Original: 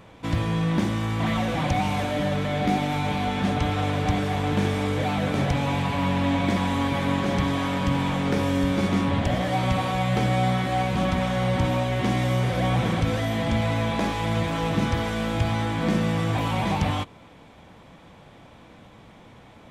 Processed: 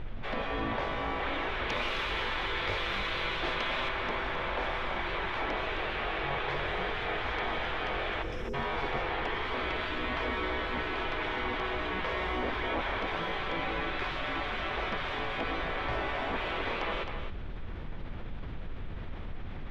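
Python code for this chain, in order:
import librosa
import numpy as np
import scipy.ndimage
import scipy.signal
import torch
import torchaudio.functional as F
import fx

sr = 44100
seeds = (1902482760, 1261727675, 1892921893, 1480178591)

y = fx.spec_gate(x, sr, threshold_db=-15, keep='weak')
y = fx.high_shelf(y, sr, hz=3000.0, db=11.0, at=(1.69, 3.89))
y = fx.spec_erase(y, sr, start_s=8.22, length_s=0.32, low_hz=550.0, high_hz=4900.0)
y = fx.dmg_noise_colour(y, sr, seeds[0], colour='brown', level_db=-43.0)
y = fx.air_absorb(y, sr, metres=340.0)
y = y + 10.0 ** (-10.5 / 20.0) * np.pad(y, (int(264 * sr / 1000.0), 0))[:len(y)]
y = fx.env_flatten(y, sr, amount_pct=50)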